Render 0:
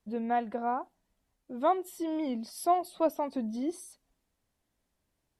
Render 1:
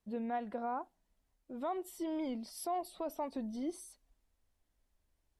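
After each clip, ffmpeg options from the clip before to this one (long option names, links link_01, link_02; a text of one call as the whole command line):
ffmpeg -i in.wav -af "alimiter=level_in=1dB:limit=-24dB:level=0:latency=1:release=47,volume=-1dB,asubboost=boost=5:cutoff=63,volume=-4dB" out.wav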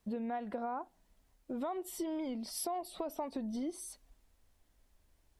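ffmpeg -i in.wav -af "acompressor=threshold=-44dB:ratio=6,volume=8.5dB" out.wav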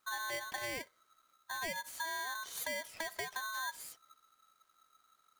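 ffmpeg -i in.wav -af "aeval=exprs='val(0)*sgn(sin(2*PI*1300*n/s))':channel_layout=same,volume=-2dB" out.wav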